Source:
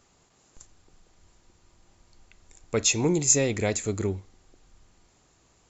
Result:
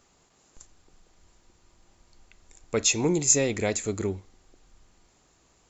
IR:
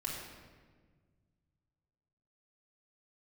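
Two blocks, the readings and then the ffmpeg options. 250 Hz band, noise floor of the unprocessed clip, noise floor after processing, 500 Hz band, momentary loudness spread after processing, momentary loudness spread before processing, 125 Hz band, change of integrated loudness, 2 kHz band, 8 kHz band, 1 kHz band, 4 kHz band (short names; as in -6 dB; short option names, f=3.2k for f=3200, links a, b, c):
-0.5 dB, -63 dBFS, -64 dBFS, 0.0 dB, 11 LU, 11 LU, -3.0 dB, 0.0 dB, 0.0 dB, n/a, 0.0 dB, 0.0 dB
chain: -af "equalizer=f=110:t=o:w=0.94:g=-4"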